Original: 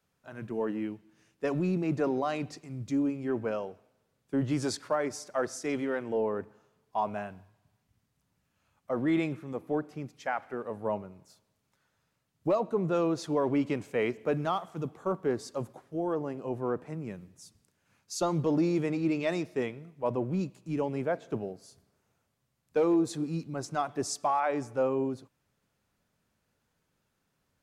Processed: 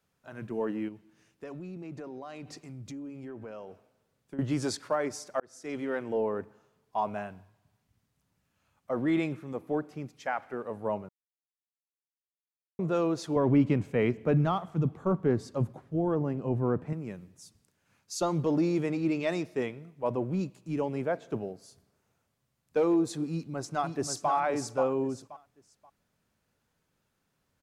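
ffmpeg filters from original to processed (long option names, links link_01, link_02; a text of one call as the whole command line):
ffmpeg -i in.wav -filter_complex "[0:a]asettb=1/sr,asplit=3[link_01][link_02][link_03];[link_01]atrim=end=0.884[link_04];[link_02]atrim=start=0.88:end=4.39,asetpts=PTS-STARTPTS,afade=type=in:duration=0.004:curve=qsin,afade=type=out:start_time=3.506:duration=0.004:curve=qsin,acompressor=threshold=-39dB:ratio=6:attack=3.2:release=140:knee=1:detection=peak[link_05];[link_03]atrim=start=4.386[link_06];[link_04][link_05]acrossfade=duration=0.004:curve1=hsin:curve2=qsin[link_07];[link_07][link_06]acrossfade=duration=0.004:curve1=qsin:curve2=hsin,asettb=1/sr,asplit=3[link_08][link_09][link_10];[link_08]atrim=end=13.364[link_11];[link_09]atrim=start=13.36:end=16.93,asetpts=PTS-STARTPTS,afade=type=in:duration=0.004:curve=qsin,afade=type=out:start_time=3.566:duration=0.004:curve=qsin,bass=frequency=250:gain=12,treble=frequency=4000:gain=-6[link_12];[link_10]atrim=start=16.926[link_13];[link_11][link_12]acrossfade=duration=0.004:curve1=hsin:curve2=qsin[link_14];[link_14][link_13]acrossfade=duration=0.004:curve1=qsin:curve2=hsin,asplit=2[link_15][link_16];[link_16]afade=type=in:start_time=23.3:duration=0.01,afade=type=out:start_time=24.3:duration=0.01,aecho=0:1:530|1060|1590:0.501187|0.125297|0.0313242[link_17];[link_15][link_17]amix=inputs=2:normalize=0,asplit=4[link_18][link_19][link_20][link_21];[link_18]atrim=end=5.4,asetpts=PTS-STARTPTS,afade=type=out:start_time=5.396:duration=0.004:curve=hsin[link_22];[link_19]atrim=start=5.4:end=11.09,asetpts=PTS-STARTPTS,afade=type=in:duration=0.56,afade=type=out:start_time=5.686:duration=0.004:curve=hsin[link_23];[link_20]atrim=start=11.09:end=12.79,asetpts=PTS-STARTPTS,volume=0[link_24];[link_21]atrim=start=12.79,asetpts=PTS-STARTPTS,afade=type=in:duration=0.004:curve=hsin[link_25];[link_22][link_23][link_24][link_25]concat=n=4:v=0:a=1" out.wav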